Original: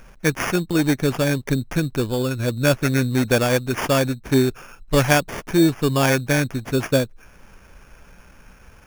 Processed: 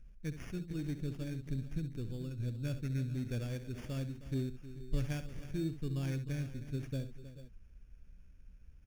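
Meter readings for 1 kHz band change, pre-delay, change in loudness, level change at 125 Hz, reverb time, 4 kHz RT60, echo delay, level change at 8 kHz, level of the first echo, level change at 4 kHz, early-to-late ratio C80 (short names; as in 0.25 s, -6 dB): -32.5 dB, none, -19.0 dB, -13.5 dB, none, none, 67 ms, -27.5 dB, -11.5 dB, -25.5 dB, none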